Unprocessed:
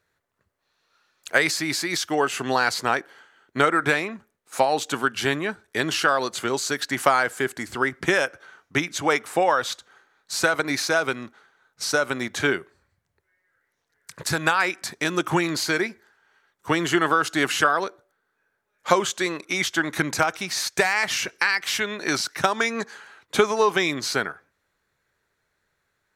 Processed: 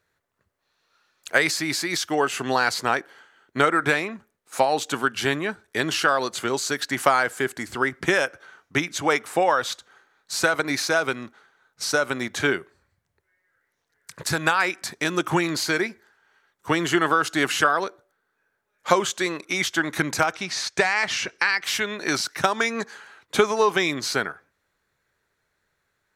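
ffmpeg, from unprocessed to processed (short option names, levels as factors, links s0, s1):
-filter_complex "[0:a]asettb=1/sr,asplit=3[s0][s1][s2];[s0]atrim=end=20.314[s3];[s1]atrim=start=20.31:end=21.64,asetpts=PTS-STARTPTS,afade=t=in:d=0.004:c=qsin,afade=t=out:st=1.326:d=0.004:c=qsin,lowpass=6700[s4];[s2]atrim=start=21.636[s5];[s3][s4]acrossfade=d=0.004:c1=hsin:c2=qsin[s6];[s6][s5]acrossfade=d=0.004:c1=qsin:c2=hsin"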